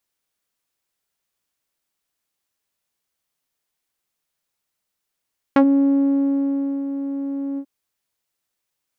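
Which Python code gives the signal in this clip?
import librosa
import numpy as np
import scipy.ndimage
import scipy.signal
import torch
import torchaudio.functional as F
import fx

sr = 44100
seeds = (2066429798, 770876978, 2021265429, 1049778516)

y = fx.sub_voice(sr, note=61, wave='saw', cutoff_hz=280.0, q=0.9, env_oct=3.0, env_s=0.08, attack_ms=1.9, decay_s=1.28, sustain_db=-11, release_s=0.07, note_s=2.02, slope=12)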